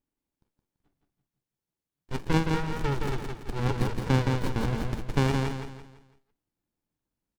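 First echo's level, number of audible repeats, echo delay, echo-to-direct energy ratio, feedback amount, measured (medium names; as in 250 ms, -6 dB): -4.0 dB, 4, 168 ms, -3.5 dB, 37%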